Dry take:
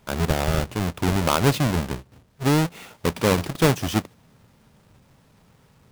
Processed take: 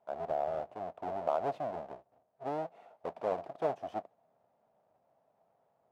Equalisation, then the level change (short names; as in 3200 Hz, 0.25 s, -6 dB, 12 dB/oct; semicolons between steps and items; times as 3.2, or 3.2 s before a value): band-pass 680 Hz, Q 6.8; 0.0 dB